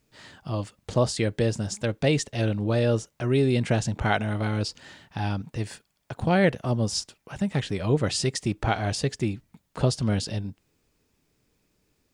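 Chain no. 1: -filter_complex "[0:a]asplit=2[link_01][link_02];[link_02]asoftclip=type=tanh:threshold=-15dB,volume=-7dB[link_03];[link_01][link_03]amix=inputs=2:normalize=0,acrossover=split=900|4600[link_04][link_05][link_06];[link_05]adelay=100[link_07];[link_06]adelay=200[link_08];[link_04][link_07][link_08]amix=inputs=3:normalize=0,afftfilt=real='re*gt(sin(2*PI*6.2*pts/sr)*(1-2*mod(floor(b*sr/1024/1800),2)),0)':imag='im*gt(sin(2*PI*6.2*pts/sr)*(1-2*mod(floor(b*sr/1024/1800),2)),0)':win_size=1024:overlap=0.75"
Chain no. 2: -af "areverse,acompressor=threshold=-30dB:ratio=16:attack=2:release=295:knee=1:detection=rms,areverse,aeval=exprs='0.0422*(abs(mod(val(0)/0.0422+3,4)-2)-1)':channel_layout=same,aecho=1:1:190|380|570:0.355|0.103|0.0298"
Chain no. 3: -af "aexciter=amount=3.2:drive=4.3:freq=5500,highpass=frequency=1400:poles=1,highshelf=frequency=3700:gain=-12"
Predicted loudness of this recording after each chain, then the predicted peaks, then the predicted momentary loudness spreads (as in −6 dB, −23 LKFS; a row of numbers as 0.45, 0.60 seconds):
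−26.5, −38.0, −36.0 LKFS; −8.5, −25.0, −13.0 dBFS; 12, 6, 14 LU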